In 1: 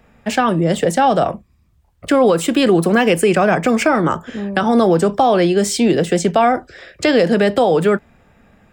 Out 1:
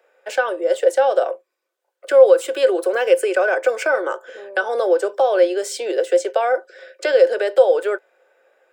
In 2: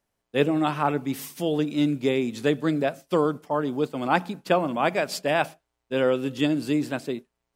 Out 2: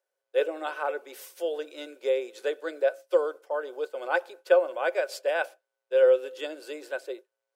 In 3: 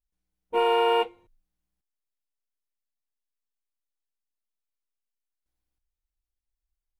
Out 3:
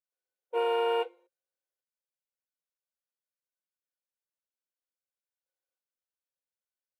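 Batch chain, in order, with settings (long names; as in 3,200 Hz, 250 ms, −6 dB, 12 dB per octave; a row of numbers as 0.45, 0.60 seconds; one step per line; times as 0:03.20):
Chebyshev high-pass filter 360 Hz, order 5
hollow resonant body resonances 530/1,500 Hz, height 15 dB, ringing for 65 ms
level −7.5 dB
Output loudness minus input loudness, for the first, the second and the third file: −2.5, −3.0, −5.5 LU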